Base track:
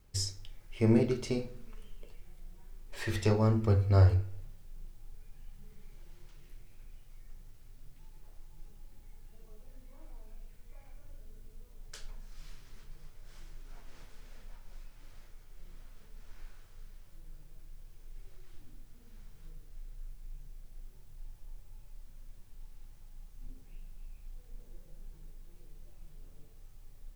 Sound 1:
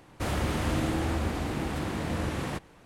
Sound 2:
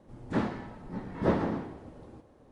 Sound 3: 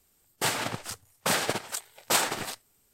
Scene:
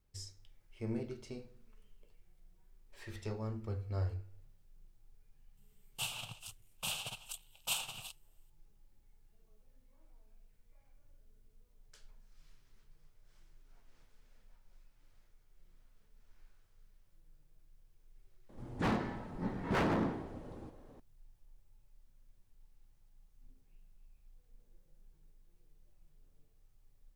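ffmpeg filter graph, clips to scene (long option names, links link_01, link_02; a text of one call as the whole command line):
ffmpeg -i bed.wav -i cue0.wav -i cue1.wav -i cue2.wav -filter_complex "[0:a]volume=-13.5dB[link_01];[3:a]firequalizer=gain_entry='entry(130,0);entry(310,-24);entry(490,-15);entry(740,-7);entry(1200,-8);entry(1900,-23);entry(2700,8);entry(4600,-5);entry(8600,0)':delay=0.05:min_phase=1[link_02];[2:a]aeval=exprs='0.0531*(abs(mod(val(0)/0.0531+3,4)-2)-1)':channel_layout=same[link_03];[link_02]atrim=end=2.93,asetpts=PTS-STARTPTS,volume=-10.5dB,afade=type=in:duration=0.004:curve=hsin,afade=type=out:start_time=2.926:duration=0.004:curve=hsin,adelay=245637S[link_04];[link_03]atrim=end=2.51,asetpts=PTS-STARTPTS,afade=type=in:duration=0.004:curve=hsin,afade=type=out:start_time=2.506:duration=0.004:curve=hsin,adelay=18490[link_05];[link_01][link_04][link_05]amix=inputs=3:normalize=0" out.wav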